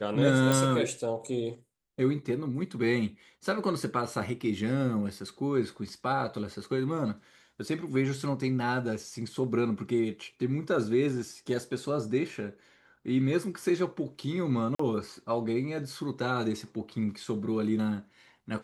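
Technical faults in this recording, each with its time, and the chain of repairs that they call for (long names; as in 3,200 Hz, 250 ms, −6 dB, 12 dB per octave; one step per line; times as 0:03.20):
0:00.52: click
0:14.75–0:14.79: drop-out 44 ms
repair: click removal
repair the gap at 0:14.75, 44 ms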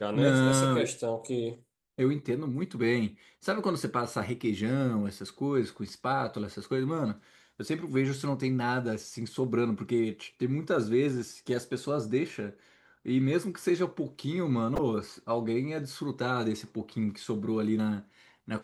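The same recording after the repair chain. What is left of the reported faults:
0:00.52: click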